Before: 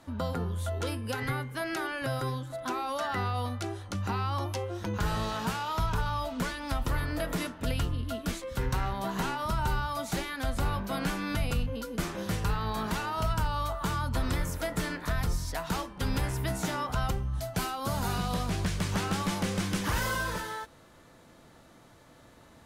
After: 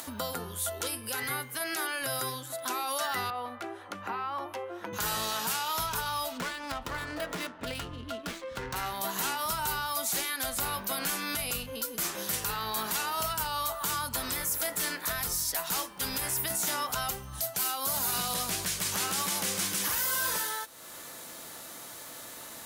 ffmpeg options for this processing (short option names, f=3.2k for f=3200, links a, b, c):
-filter_complex "[0:a]asettb=1/sr,asplit=3[a][b][c];[a]atrim=end=3.304[d];[b]atrim=start=3.3:end=4.93,asetpts=PTS-STARTPTS,afade=t=in:d=0.004:c=qsin,afade=t=out:st=1.626:d=0.004:c=qsin,acrossover=split=200 2400:gain=0.224 1 0.0631[e][f][g];[e][f][g]amix=inputs=3:normalize=0[h];[c]atrim=start=4.926[i];[d][h]acrossfade=d=0.004:c1=hsin:c2=qsin[j];[j][i]acrossfade=d=0.004:c1=qsin:c2=hsin,asplit=3[k][l][m];[k]afade=t=out:st=6.37:d=0.02[n];[l]adynamicsmooth=sensitivity=5:basefreq=1.9k,afade=t=in:st=6.37:d=0.02,afade=t=out:st=8.75:d=0.02[o];[m]afade=t=in:st=8.75:d=0.02[p];[n][o][p]amix=inputs=3:normalize=0,aemphasis=mode=production:type=riaa,alimiter=limit=-20dB:level=0:latency=1:release=19,acompressor=mode=upward:threshold=-34dB:ratio=2.5"